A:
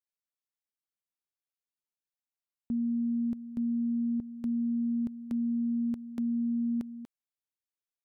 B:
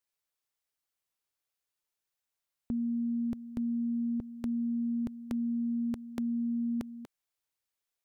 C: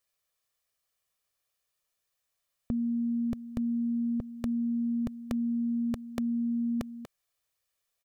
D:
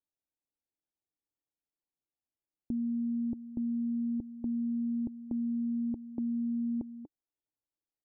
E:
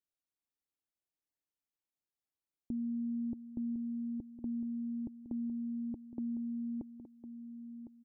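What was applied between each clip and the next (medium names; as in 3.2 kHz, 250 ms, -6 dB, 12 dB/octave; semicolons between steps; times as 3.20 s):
peaking EQ 220 Hz -9 dB; trim +6.5 dB
comb 1.7 ms, depth 44%; trim +5 dB
cascade formant filter u; trim +4.5 dB
delay 1057 ms -11 dB; trim -4 dB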